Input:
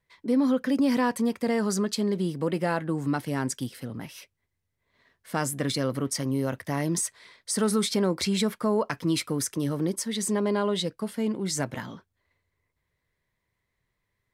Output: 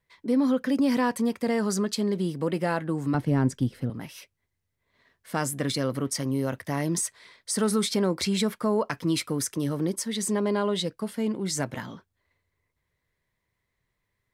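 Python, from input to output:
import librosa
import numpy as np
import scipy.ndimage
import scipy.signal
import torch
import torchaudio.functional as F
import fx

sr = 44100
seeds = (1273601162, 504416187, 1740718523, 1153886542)

y = fx.tilt_eq(x, sr, slope=-3.0, at=(3.14, 3.9))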